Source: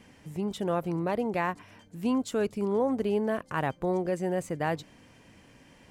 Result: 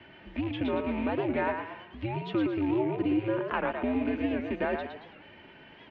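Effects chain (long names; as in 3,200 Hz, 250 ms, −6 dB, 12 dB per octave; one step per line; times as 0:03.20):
loose part that buzzes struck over −35 dBFS, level −35 dBFS
downward compressor, threshold −31 dBFS, peak gain reduction 9 dB
single-sideband voice off tune −110 Hz 250–3,600 Hz
comb filter 3.3 ms, depth 53%
echo with shifted repeats 112 ms, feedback 39%, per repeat +30 Hz, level −5.5 dB
wow of a warped record 78 rpm, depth 160 cents
level +5 dB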